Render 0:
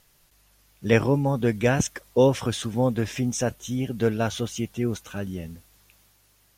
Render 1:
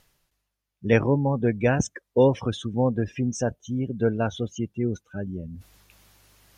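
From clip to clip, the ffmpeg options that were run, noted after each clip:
-af "afftdn=nr=23:nf=-32,highshelf=f=6.5k:g=-6,areverse,acompressor=mode=upward:threshold=-34dB:ratio=2.5,areverse"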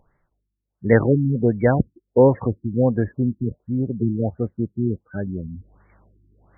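-af "afftfilt=real='re*lt(b*sr/1024,350*pow(2300/350,0.5+0.5*sin(2*PI*1.4*pts/sr)))':imag='im*lt(b*sr/1024,350*pow(2300/350,0.5+0.5*sin(2*PI*1.4*pts/sr)))':win_size=1024:overlap=0.75,volume=4.5dB"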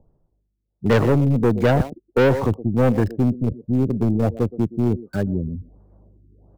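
-filter_complex "[0:a]asplit=2[a][b];[b]adelay=120,highpass=300,lowpass=3.4k,asoftclip=type=hard:threshold=-11.5dB,volume=-14dB[c];[a][c]amix=inputs=2:normalize=0,aeval=exprs='(tanh(8.91*val(0)+0.35)-tanh(0.35))/8.91':c=same,acrossover=split=140|710[d][e][f];[f]aeval=exprs='val(0)*gte(abs(val(0)),0.00708)':c=same[g];[d][e][g]amix=inputs=3:normalize=0,volume=6.5dB"

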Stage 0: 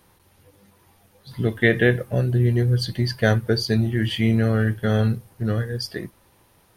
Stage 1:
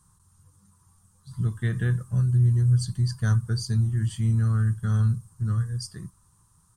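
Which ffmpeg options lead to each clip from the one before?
-af "firequalizer=gain_entry='entry(170,0);entry(240,-14);entry(600,-26);entry(1100,-2);entry(2100,-24);entry(8000,9);entry(12000,-13)':delay=0.05:min_phase=1"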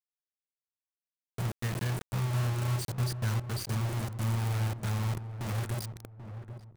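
-filter_complex "[0:a]acompressor=threshold=-24dB:ratio=2,acrusher=bits=4:mix=0:aa=0.000001,asplit=2[a][b];[b]adelay=787,lowpass=f=920:p=1,volume=-9.5dB,asplit=2[c][d];[d]adelay=787,lowpass=f=920:p=1,volume=0.3,asplit=2[e][f];[f]adelay=787,lowpass=f=920:p=1,volume=0.3[g];[a][c][e][g]amix=inputs=4:normalize=0,volume=-6dB"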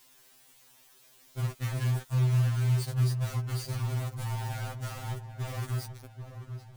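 -af "aeval=exprs='val(0)+0.5*0.00562*sgn(val(0))':c=same,afftfilt=real='re*2.45*eq(mod(b,6),0)':imag='im*2.45*eq(mod(b,6),0)':win_size=2048:overlap=0.75"

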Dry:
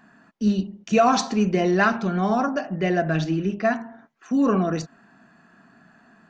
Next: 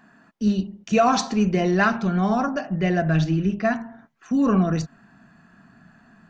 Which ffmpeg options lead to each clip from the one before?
-af "asubboost=boost=3.5:cutoff=180"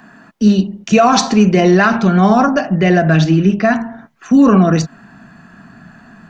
-filter_complex "[0:a]acrossover=split=140|3300[a][b][c];[a]acompressor=threshold=-43dB:ratio=6[d];[d][b][c]amix=inputs=3:normalize=0,alimiter=level_in=13dB:limit=-1dB:release=50:level=0:latency=1,volume=-1dB"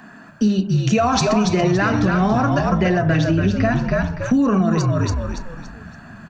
-filter_complex "[0:a]asplit=2[a][b];[b]asplit=4[c][d][e][f];[c]adelay=283,afreqshift=-60,volume=-5dB[g];[d]adelay=566,afreqshift=-120,volume=-13.9dB[h];[e]adelay=849,afreqshift=-180,volume=-22.7dB[i];[f]adelay=1132,afreqshift=-240,volume=-31.6dB[j];[g][h][i][j]amix=inputs=4:normalize=0[k];[a][k]amix=inputs=2:normalize=0,acompressor=threshold=-14dB:ratio=6"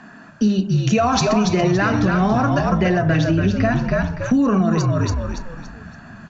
-af "acrusher=bits=9:mix=0:aa=0.000001,aresample=16000,aresample=44100"

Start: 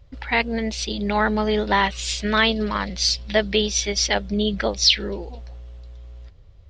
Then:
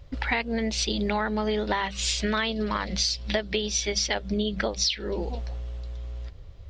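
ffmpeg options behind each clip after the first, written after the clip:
-af "bandreject=f=50:t=h:w=6,bandreject=f=100:t=h:w=6,bandreject=f=150:t=h:w=6,bandreject=f=200:t=h:w=6,acompressor=threshold=-28dB:ratio=12,volume=5dB"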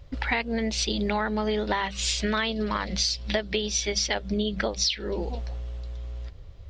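-af anull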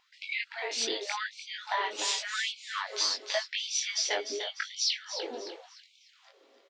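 -af "flanger=delay=20:depth=2.3:speed=0.9,aecho=1:1:298|596|894|1192:0.335|0.121|0.0434|0.0156,afftfilt=real='re*gte(b*sr/1024,230*pow(2200/230,0.5+0.5*sin(2*PI*0.88*pts/sr)))':imag='im*gte(b*sr/1024,230*pow(2200/230,0.5+0.5*sin(2*PI*0.88*pts/sr)))':win_size=1024:overlap=0.75"

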